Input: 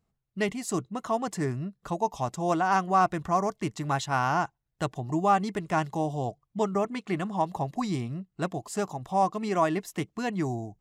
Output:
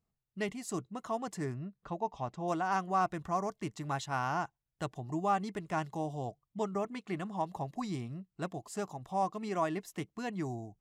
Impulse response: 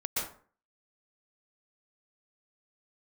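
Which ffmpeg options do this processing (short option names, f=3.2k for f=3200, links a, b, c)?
-filter_complex "[0:a]asettb=1/sr,asplit=3[a][b][c];[a]atrim=end=1.544[d];[b]atrim=start=1.54:end=2.48,asetpts=PTS-STARTPTS,afade=t=in:d=0.004:c=qsin,afade=t=out:st=0.936:d=0.004:c=qsin,lowpass=3.6k[e];[c]atrim=start=2.476[f];[d][e]acrossfade=d=0.004:c1=hsin:c2=qsin[g];[g][f]acrossfade=d=0.004:c1=qsin:c2=hsin,volume=-7.5dB"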